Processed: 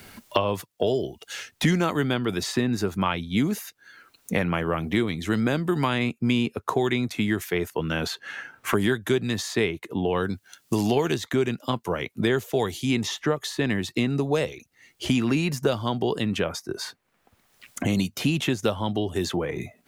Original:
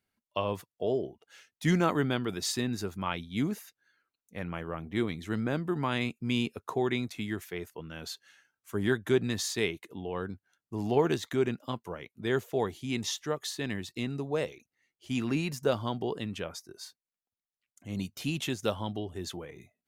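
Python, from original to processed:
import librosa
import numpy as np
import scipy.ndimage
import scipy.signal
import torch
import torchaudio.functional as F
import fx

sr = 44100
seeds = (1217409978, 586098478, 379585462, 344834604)

y = fx.band_squash(x, sr, depth_pct=100)
y = y * librosa.db_to_amplitude(6.5)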